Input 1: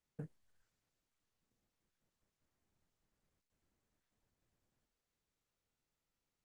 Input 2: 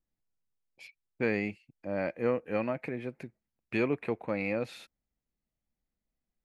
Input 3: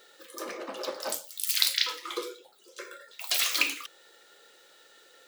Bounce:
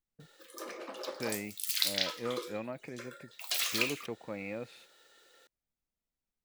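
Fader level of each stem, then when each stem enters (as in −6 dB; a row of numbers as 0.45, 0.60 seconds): −9.5, −8.0, −5.5 decibels; 0.00, 0.00, 0.20 seconds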